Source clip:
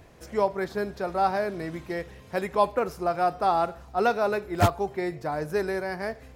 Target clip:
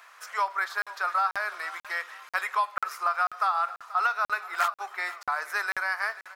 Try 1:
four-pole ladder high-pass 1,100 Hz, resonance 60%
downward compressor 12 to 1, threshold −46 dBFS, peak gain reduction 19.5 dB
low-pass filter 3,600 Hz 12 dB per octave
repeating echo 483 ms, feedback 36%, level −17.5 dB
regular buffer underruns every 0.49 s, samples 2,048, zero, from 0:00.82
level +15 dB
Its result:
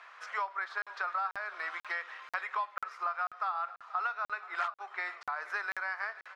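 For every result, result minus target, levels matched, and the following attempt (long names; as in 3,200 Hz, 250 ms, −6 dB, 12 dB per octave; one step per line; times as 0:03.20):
downward compressor: peak gain reduction +8 dB; 4,000 Hz band −2.5 dB
four-pole ladder high-pass 1,100 Hz, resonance 60%
downward compressor 12 to 1, threshold −37 dBFS, peak gain reduction 11 dB
low-pass filter 3,600 Hz 12 dB per octave
repeating echo 483 ms, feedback 36%, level −17.5 dB
regular buffer underruns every 0.49 s, samples 2,048, zero, from 0:00.82
level +15 dB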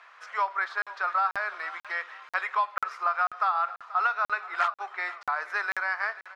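4,000 Hz band −4.0 dB
four-pole ladder high-pass 1,100 Hz, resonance 60%
downward compressor 12 to 1, threshold −37 dBFS, peak gain reduction 11 dB
repeating echo 483 ms, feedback 36%, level −17.5 dB
regular buffer underruns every 0.49 s, samples 2,048, zero, from 0:00.82
level +15 dB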